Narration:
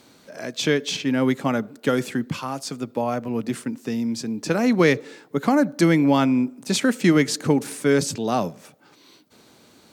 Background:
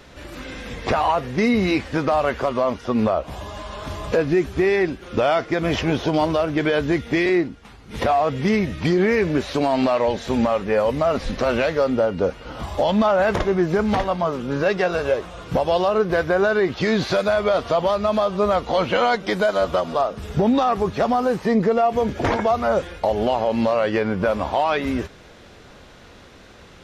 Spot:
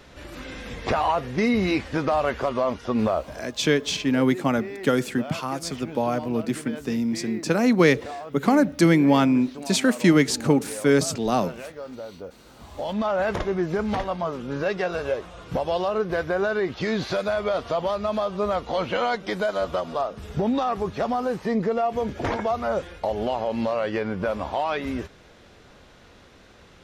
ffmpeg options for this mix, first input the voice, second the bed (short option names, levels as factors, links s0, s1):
-filter_complex "[0:a]adelay=3000,volume=1[s0];[1:a]volume=2.82,afade=t=out:st=3.19:d=0.23:silence=0.188365,afade=t=in:st=12.59:d=0.6:silence=0.251189[s1];[s0][s1]amix=inputs=2:normalize=0"